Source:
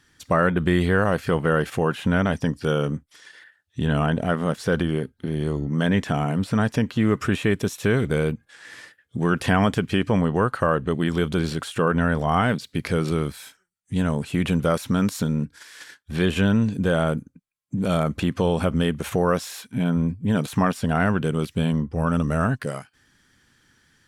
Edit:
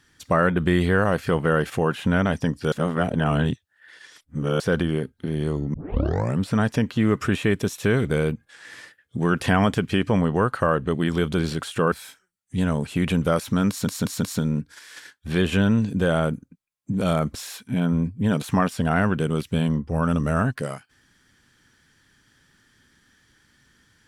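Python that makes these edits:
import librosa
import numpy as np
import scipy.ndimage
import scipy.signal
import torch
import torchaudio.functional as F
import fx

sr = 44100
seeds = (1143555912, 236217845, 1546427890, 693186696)

y = fx.edit(x, sr, fx.reverse_span(start_s=2.72, length_s=1.88),
    fx.tape_start(start_s=5.74, length_s=0.66),
    fx.cut(start_s=11.92, length_s=1.38),
    fx.stutter(start_s=15.07, slice_s=0.18, count=4),
    fx.cut(start_s=18.19, length_s=1.2), tone=tone)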